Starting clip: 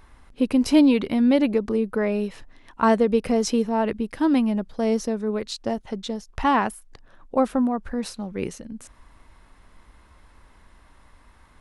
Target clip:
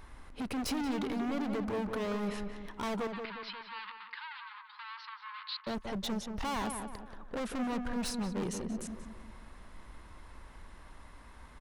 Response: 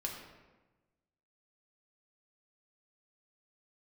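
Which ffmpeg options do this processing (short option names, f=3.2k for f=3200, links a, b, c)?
-filter_complex "[0:a]alimiter=limit=-17.5dB:level=0:latency=1:release=122,asoftclip=type=hard:threshold=-33.5dB,asettb=1/sr,asplit=3[a][b][c];[a]atrim=end=3.074[d];[b]atrim=start=3.07:end=5.67,asetpts=PTS-STARTPTS,afade=t=in:d=0.004:c=qsin,afade=t=out:st=2.596:d=0.004:c=qsin,asuperpass=centerf=2100:order=20:qfactor=0.57[e];[c]atrim=start=5.666[f];[d][e]acrossfade=d=0.004:c1=hsin:c2=qsin[g];[g][f]acrossfade=d=0.004:c1=qsin:c2=hsin,asplit=2[h][i];[i]adelay=180,lowpass=f=2k:p=1,volume=-5.5dB,asplit=2[j][k];[k]adelay=180,lowpass=f=2k:p=1,volume=0.47,asplit=2[l][m];[m]adelay=180,lowpass=f=2k:p=1,volume=0.47,asplit=2[n][o];[o]adelay=180,lowpass=f=2k:p=1,volume=0.47,asplit=2[p][q];[q]adelay=180,lowpass=f=2k:p=1,volume=0.47,asplit=2[r][s];[s]adelay=180,lowpass=f=2k:p=1,volume=0.47[t];[h][j][l][n][p][r][t]amix=inputs=7:normalize=0"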